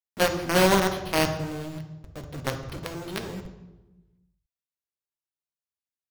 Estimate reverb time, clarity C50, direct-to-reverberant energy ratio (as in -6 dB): 1.1 s, 9.0 dB, 5.0 dB